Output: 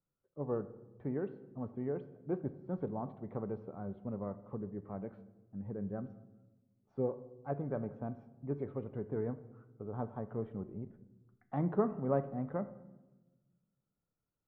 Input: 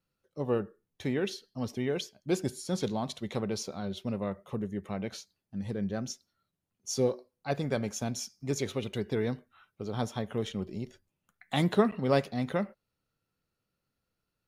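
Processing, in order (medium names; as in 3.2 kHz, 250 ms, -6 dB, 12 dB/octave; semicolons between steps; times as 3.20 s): low-pass 1.3 kHz 24 dB/octave; simulated room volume 640 m³, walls mixed, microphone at 0.33 m; trim -6.5 dB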